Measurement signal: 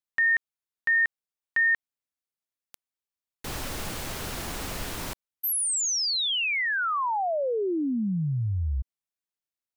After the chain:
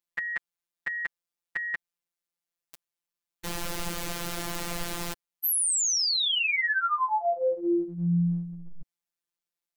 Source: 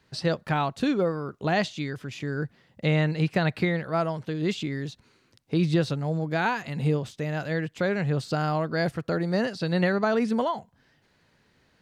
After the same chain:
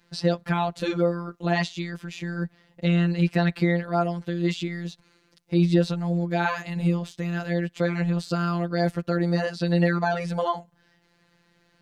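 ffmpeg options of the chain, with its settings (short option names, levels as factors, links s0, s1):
-af "afftfilt=real='hypot(re,im)*cos(PI*b)':imag='0':win_size=1024:overlap=0.75,acontrast=73,volume=0.75"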